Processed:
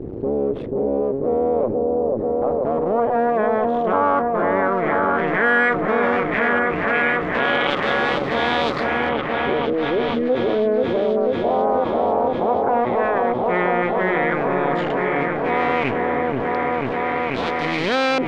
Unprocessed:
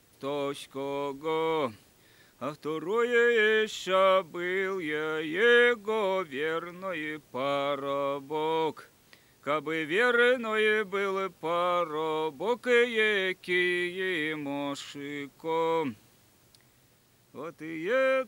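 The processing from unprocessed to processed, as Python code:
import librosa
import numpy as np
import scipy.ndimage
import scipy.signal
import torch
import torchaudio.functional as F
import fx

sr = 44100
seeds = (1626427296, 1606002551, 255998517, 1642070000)

y = fx.cycle_switch(x, sr, every=2, mode='muted')
y = fx.filter_lfo_lowpass(y, sr, shape='saw_up', hz=0.11, low_hz=360.0, high_hz=4500.0, q=2.6)
y = fx.spec_box(y, sr, start_s=10.0, length_s=0.29, low_hz=250.0, high_hz=1700.0, gain_db=-28)
y = fx.echo_opening(y, sr, ms=488, hz=750, octaves=1, feedback_pct=70, wet_db=-3)
y = fx.env_flatten(y, sr, amount_pct=70)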